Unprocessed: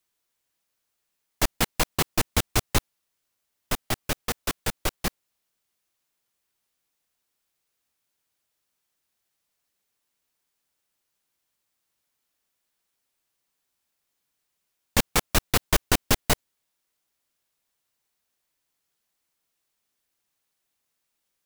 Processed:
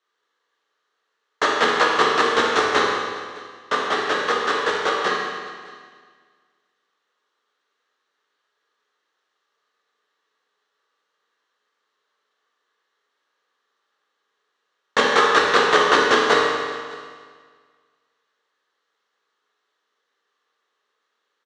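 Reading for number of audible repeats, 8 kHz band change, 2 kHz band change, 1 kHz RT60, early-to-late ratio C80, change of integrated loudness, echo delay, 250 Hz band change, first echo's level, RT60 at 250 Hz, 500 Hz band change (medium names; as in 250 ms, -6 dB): 1, -5.0 dB, +12.0 dB, 1.8 s, 1.5 dB, +7.5 dB, 608 ms, +3.0 dB, -23.0 dB, 1.9 s, +13.0 dB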